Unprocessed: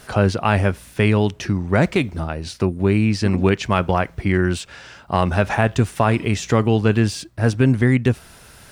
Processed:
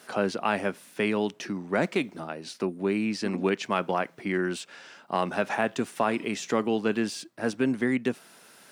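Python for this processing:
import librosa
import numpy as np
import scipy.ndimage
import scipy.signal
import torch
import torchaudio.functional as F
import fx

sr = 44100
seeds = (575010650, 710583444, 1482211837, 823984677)

y = scipy.signal.sosfilt(scipy.signal.butter(4, 200.0, 'highpass', fs=sr, output='sos'), x)
y = F.gain(torch.from_numpy(y), -7.0).numpy()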